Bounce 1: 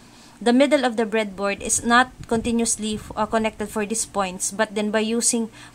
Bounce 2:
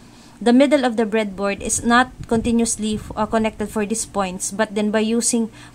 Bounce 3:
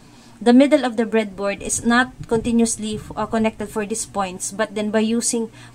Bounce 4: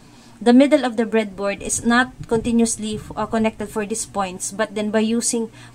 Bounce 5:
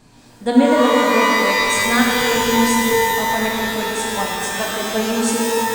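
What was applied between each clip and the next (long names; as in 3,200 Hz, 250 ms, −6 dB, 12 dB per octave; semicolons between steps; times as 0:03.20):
low-shelf EQ 450 Hz +5.5 dB
flanger 1.3 Hz, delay 6.3 ms, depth 2.8 ms, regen +41%; level +2.5 dB
no processing that can be heard
reverb with rising layers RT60 2.9 s, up +12 semitones, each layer −2 dB, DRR −2.5 dB; level −5 dB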